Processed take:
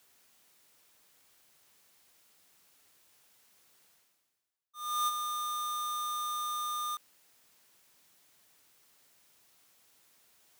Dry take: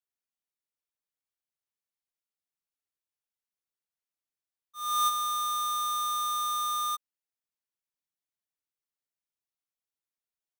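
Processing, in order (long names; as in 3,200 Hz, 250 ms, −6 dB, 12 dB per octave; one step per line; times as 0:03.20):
high-pass filter 96 Hz 6 dB per octave
reversed playback
upward compression, threshold −35 dBFS
reversed playback
level −5 dB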